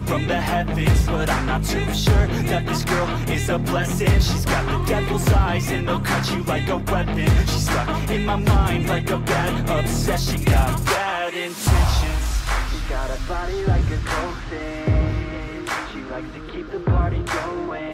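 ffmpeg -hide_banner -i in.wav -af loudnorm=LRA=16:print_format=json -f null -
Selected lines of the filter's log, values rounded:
"input_i" : "-21.9",
"input_tp" : "-6.8",
"input_lra" : "5.0",
"input_thresh" : "-32.0",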